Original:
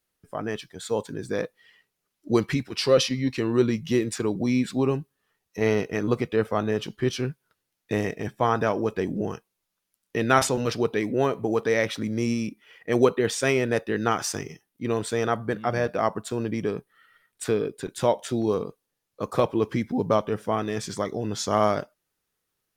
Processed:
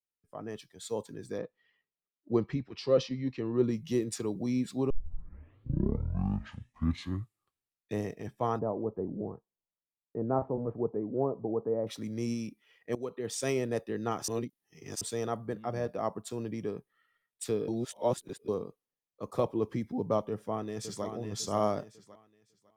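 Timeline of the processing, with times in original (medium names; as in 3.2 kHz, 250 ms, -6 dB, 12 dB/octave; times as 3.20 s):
1.38–3.64 s: distance through air 180 m
4.90 s: tape start 3.04 s
8.59–11.87 s: low-pass 1 kHz 24 dB/octave
12.95–13.43 s: fade in, from -19 dB
14.28–15.01 s: reverse
17.68–18.48 s: reverse
20.29–21.05 s: echo throw 550 ms, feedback 40%, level -7 dB
whole clip: band-stop 1.5 kHz, Q 9.7; dynamic bell 2.2 kHz, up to -8 dB, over -41 dBFS, Q 0.73; three bands expanded up and down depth 40%; trim -7 dB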